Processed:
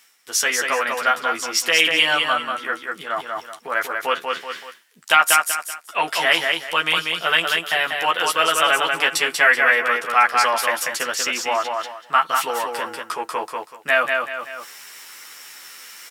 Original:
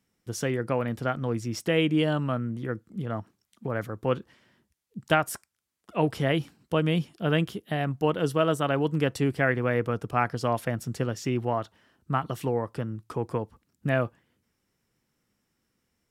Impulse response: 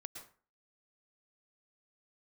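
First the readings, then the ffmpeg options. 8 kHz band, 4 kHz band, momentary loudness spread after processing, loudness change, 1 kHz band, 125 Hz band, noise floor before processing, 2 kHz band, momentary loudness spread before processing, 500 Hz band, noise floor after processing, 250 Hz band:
+18.5 dB, +17.5 dB, 17 LU, +9.0 dB, +12.0 dB, -20.0 dB, -78 dBFS, +16.0 dB, 10 LU, +2.0 dB, -49 dBFS, -9.0 dB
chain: -filter_complex "[0:a]asplit=2[a][b];[b]adelay=12,volume=-3dB[c];[a][c]amix=inputs=2:normalize=0,aecho=1:1:190|380|570:0.562|0.146|0.038,apsyclip=16.5dB,highpass=1.3k,areverse,acompressor=mode=upward:threshold=-21dB:ratio=2.5,areverse,volume=-1dB"

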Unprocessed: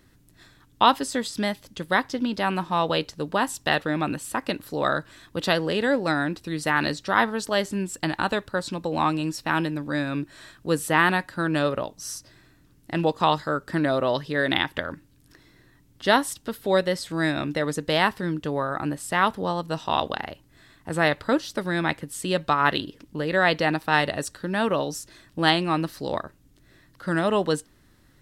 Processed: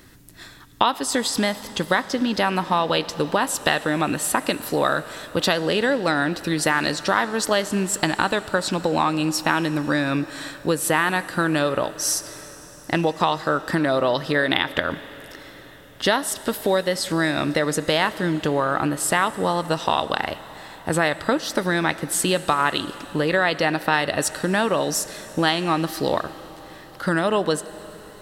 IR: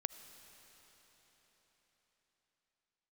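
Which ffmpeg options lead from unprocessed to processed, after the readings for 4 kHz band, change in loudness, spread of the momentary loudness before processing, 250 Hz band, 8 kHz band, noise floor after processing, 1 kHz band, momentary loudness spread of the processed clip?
+3.5 dB, +3.0 dB, 10 LU, +2.5 dB, +10.0 dB, -43 dBFS, +2.0 dB, 9 LU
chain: -filter_complex "[0:a]acompressor=threshold=-27dB:ratio=6,asplit=2[a][b];[1:a]atrim=start_sample=2205,lowshelf=f=210:g=-10.5,highshelf=f=8.4k:g=5[c];[b][c]afir=irnorm=-1:irlink=0,volume=4.5dB[d];[a][d]amix=inputs=2:normalize=0,volume=3.5dB"

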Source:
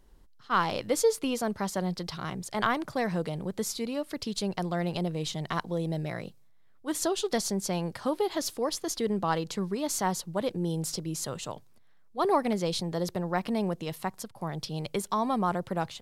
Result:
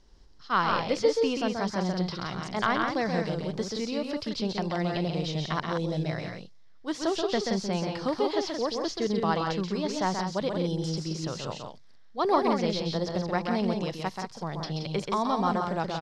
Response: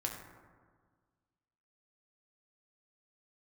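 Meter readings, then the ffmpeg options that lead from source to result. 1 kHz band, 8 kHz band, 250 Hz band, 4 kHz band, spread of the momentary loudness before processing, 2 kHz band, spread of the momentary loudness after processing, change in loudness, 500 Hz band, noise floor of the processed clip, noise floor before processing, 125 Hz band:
+2.0 dB, -8.0 dB, +2.0 dB, +2.0 dB, 8 LU, +2.5 dB, 8 LU, +1.5 dB, +2.0 dB, -49 dBFS, -55 dBFS, +2.0 dB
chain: -filter_complex "[0:a]lowpass=f=5.3k:t=q:w=3.5,acrossover=split=3300[a][b];[b]acompressor=threshold=-44dB:ratio=4:attack=1:release=60[c];[a][c]amix=inputs=2:normalize=0,aecho=1:1:131.2|174.9:0.562|0.501"

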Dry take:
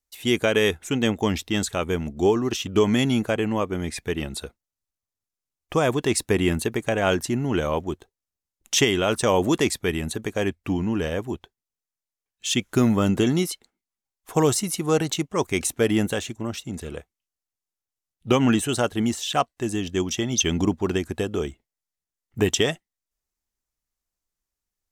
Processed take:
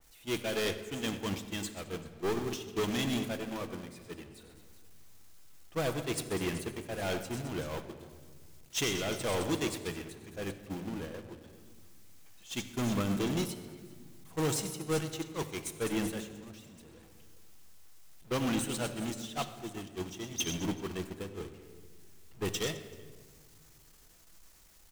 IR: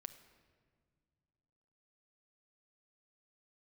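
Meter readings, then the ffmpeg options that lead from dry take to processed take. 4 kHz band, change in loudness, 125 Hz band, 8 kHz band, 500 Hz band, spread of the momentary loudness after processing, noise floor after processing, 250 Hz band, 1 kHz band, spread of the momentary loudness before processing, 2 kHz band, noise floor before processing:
-10.5 dB, -12.0 dB, -11.5 dB, -11.0 dB, -13.0 dB, 17 LU, -58 dBFS, -12.5 dB, -12.0 dB, 10 LU, -11.5 dB, under -85 dBFS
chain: -filter_complex "[0:a]aeval=exprs='val(0)+0.5*0.0531*sgn(val(0))':c=same,aecho=1:1:98|132|218|390:0.282|0.266|0.237|0.2,asoftclip=type=tanh:threshold=-18.5dB,agate=range=-23dB:threshold=-22dB:ratio=16:detection=peak[a];[1:a]atrim=start_sample=2205[b];[a][b]afir=irnorm=-1:irlink=0,adynamicequalizer=threshold=0.00562:dfrequency=2300:dqfactor=0.7:tfrequency=2300:tqfactor=0.7:attack=5:release=100:ratio=0.375:range=2:mode=boostabove:tftype=highshelf"

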